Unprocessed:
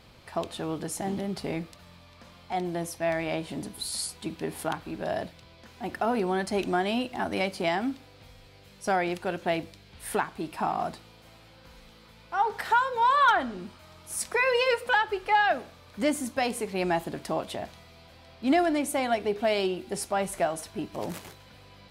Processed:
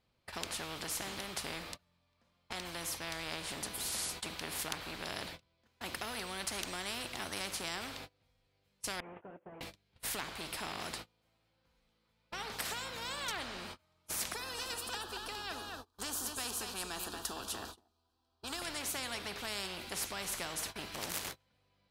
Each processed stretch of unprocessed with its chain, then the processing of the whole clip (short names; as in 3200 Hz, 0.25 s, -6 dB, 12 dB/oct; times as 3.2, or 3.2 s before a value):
9–9.61 delta modulation 16 kbps, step -45 dBFS + band-pass 530 Hz, Q 0.98 + compressor 8:1, threshold -42 dBFS
14.34–18.62 fixed phaser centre 570 Hz, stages 6 + echo 0.23 s -11.5 dB
whole clip: gate -44 dBFS, range -32 dB; spectral compressor 4:1; gain -2.5 dB